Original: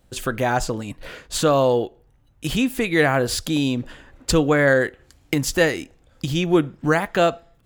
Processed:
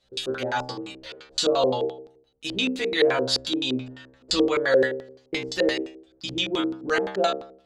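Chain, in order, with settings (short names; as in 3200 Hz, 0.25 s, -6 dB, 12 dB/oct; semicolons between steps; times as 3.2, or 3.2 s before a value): tone controls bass -11 dB, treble +10 dB; metallic resonator 63 Hz, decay 0.71 s, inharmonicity 0.002; LFO low-pass square 5.8 Hz 430–4000 Hz; gain +6.5 dB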